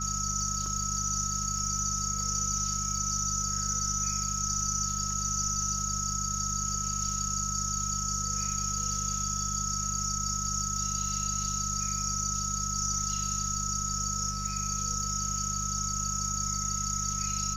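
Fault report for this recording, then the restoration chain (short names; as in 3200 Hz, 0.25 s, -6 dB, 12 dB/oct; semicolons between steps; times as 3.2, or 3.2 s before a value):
crackle 30/s -38 dBFS
hum 50 Hz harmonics 4 -37 dBFS
tone 1300 Hz -36 dBFS
0.66 gap 2.1 ms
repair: de-click; de-hum 50 Hz, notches 4; notch 1300 Hz, Q 30; interpolate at 0.66, 2.1 ms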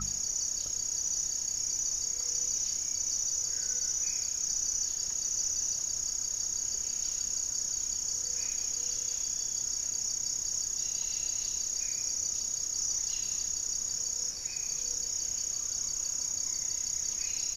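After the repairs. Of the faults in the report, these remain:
none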